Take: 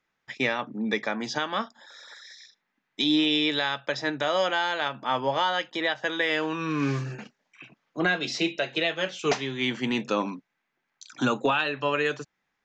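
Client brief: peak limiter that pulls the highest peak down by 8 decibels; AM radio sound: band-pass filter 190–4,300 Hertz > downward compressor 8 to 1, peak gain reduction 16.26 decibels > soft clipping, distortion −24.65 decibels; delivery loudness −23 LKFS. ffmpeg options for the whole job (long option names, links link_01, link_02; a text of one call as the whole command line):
ffmpeg -i in.wav -af "alimiter=limit=-21dB:level=0:latency=1,highpass=190,lowpass=4300,acompressor=threshold=-43dB:ratio=8,asoftclip=threshold=-33.5dB,volume=24dB" out.wav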